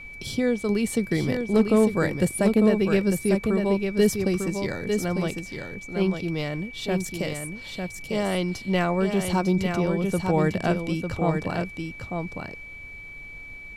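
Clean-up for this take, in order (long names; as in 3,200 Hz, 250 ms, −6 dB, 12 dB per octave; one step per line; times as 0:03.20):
clipped peaks rebuilt −11 dBFS
notch filter 2,300 Hz, Q 30
noise reduction from a noise print 29 dB
echo removal 900 ms −5.5 dB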